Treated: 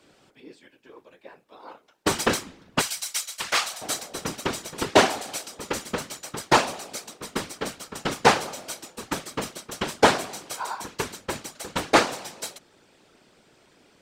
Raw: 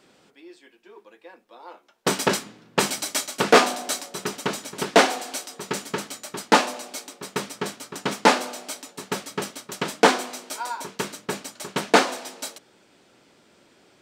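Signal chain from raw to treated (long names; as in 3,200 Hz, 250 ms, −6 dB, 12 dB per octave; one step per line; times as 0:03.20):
0:02.81–0:03.82: guitar amp tone stack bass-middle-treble 10-0-10
random phases in short frames
level −1 dB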